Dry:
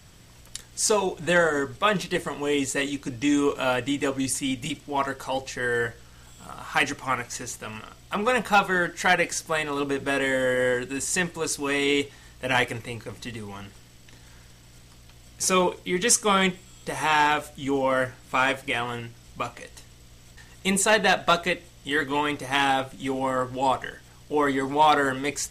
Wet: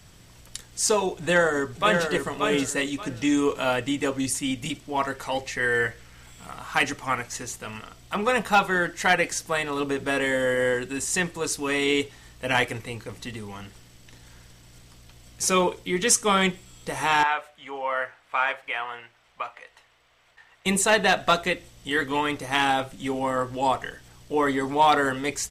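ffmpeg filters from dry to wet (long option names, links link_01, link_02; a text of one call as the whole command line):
ffmpeg -i in.wav -filter_complex "[0:a]asplit=2[link_01][link_02];[link_02]afade=type=in:start_time=1.17:duration=0.01,afade=type=out:start_time=2.11:duration=0.01,aecho=0:1:580|1160|1740:0.562341|0.140585|0.0351463[link_03];[link_01][link_03]amix=inputs=2:normalize=0,asettb=1/sr,asplit=3[link_04][link_05][link_06];[link_04]atrim=end=5.144[link_07];[link_05]atrim=start=5.14:end=6.59,asetpts=PTS-STARTPTS,afade=type=in:duration=0.004:curve=qsin,afade=type=out:start_time=1.446:duration=0.004:curve=qsin,equalizer=frequency=2100:width=2.9:gain=8.5[link_08];[link_06]atrim=start=6.586[link_09];[link_07][link_08]acrossfade=duration=0.004:curve1=hsin:curve2=qsin[link_10];[link_10][link_09]acrossfade=duration=0.004:curve1=qsin:curve2=hsin,asettb=1/sr,asplit=3[link_11][link_12][link_13];[link_11]atrim=end=17.234[link_14];[link_12]atrim=start=17.23:end=20.66,asetpts=PTS-STARTPTS,afade=type=in:duration=0.004:curve=qsin,afade=type=out:start_time=3.426:duration=0.004:curve=qsin,acrossover=split=580 3000:gain=0.0708 1 0.126[link_15][link_16][link_17];[link_15][link_16][link_17]amix=inputs=3:normalize=0[link_18];[link_13]atrim=start=20.656[link_19];[link_14][link_18]acrossfade=duration=0.004:curve1=hsin:curve2=qsin[link_20];[link_20][link_19]acrossfade=duration=0.004:curve1=qsin:curve2=hsin" out.wav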